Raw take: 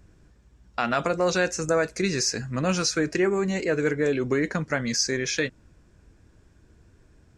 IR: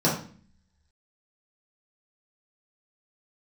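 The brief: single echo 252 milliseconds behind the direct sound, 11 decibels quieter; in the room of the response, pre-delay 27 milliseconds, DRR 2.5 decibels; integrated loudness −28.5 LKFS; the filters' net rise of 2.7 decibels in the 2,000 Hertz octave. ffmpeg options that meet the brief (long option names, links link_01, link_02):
-filter_complex "[0:a]equalizer=frequency=2000:width_type=o:gain=3.5,aecho=1:1:252:0.282,asplit=2[link_01][link_02];[1:a]atrim=start_sample=2205,adelay=27[link_03];[link_02][link_03]afir=irnorm=-1:irlink=0,volume=-17dB[link_04];[link_01][link_04]amix=inputs=2:normalize=0,volume=-8.5dB"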